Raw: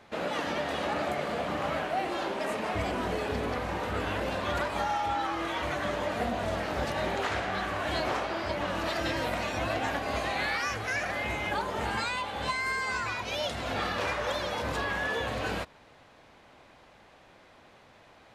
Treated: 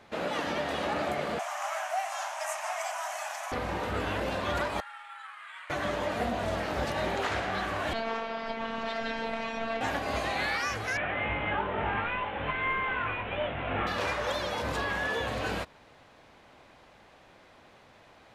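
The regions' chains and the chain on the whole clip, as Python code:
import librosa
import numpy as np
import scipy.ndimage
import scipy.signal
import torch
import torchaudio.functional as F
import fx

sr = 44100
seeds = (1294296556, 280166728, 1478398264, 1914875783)

y = fx.chain(x, sr, fx.steep_highpass(hz=620.0, slope=96),
    fx.high_shelf_res(hz=5100.0, db=6.5, q=3.0), at=(1.39, 3.52))
y = fx.chain(y, sr, fx.highpass(hz=1400.0, slope=24),
    fx.resample_bad(factor=4, down='filtered', up='zero_stuff'),
    fx.spacing_loss(db_at_10k=39), at=(4.8, 5.7))
y = fx.chain(y, sr, fx.lowpass(hz=4200.0, slope=12),
    fx.robotise(hz=226.0), at=(7.93, 9.81))
y = fx.chain(y, sr, fx.cvsd(bps=16000),
    fx.doubler(ms=20.0, db=-5.0), at=(10.97, 13.87))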